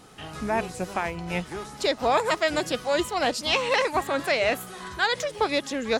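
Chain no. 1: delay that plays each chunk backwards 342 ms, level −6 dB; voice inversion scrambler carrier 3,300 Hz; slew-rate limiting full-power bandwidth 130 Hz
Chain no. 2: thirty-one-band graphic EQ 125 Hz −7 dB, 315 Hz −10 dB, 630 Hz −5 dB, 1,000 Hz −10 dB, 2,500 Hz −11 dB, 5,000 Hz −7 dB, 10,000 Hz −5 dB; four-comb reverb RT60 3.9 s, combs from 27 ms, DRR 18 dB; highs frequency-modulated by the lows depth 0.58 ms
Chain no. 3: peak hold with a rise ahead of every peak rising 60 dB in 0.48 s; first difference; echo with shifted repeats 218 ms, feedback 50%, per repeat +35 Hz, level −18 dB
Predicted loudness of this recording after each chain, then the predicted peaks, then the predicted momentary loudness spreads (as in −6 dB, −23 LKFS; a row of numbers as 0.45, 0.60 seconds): −27.0, −29.5, −33.5 LKFS; −12.0, −14.5, −16.0 dBFS; 5, 8, 12 LU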